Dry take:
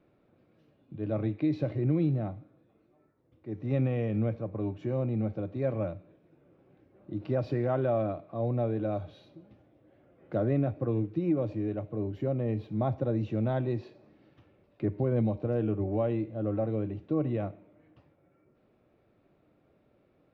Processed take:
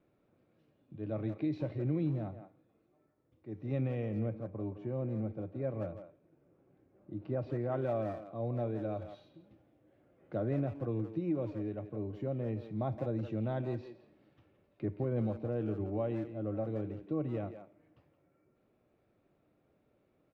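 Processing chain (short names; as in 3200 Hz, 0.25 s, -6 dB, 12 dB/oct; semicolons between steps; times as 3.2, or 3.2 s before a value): 4.09–7.72 LPF 1800 Hz 6 dB/oct; speakerphone echo 0.17 s, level -9 dB; gain -6 dB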